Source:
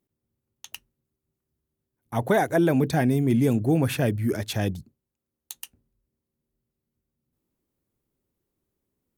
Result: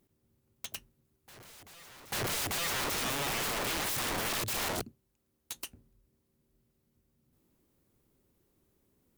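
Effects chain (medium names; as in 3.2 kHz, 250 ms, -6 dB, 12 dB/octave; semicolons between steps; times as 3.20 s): peak limiter -22 dBFS, peak gain reduction 11.5 dB; integer overflow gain 36 dB; reverse echo 842 ms -20 dB; trim +7.5 dB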